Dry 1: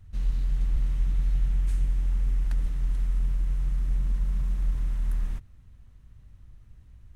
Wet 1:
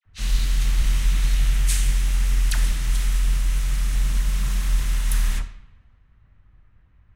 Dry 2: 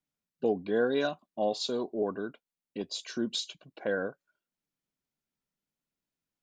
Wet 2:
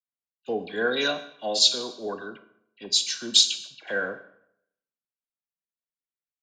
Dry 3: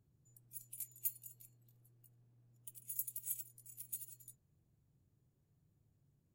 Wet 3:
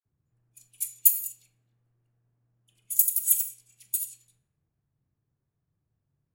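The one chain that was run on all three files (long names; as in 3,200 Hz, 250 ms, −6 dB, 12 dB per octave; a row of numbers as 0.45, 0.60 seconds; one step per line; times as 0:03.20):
tilt shelving filter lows −10 dB, about 1,300 Hz
four-comb reverb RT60 0.93 s, combs from 28 ms, DRR 9.5 dB
low-pass that shuts in the quiet parts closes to 1,400 Hz, open at −32 dBFS
all-pass dispersion lows, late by 51 ms, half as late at 1,600 Hz
multiband upward and downward expander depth 40%
loudness normalisation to −24 LKFS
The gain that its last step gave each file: +14.5, +5.5, +8.5 decibels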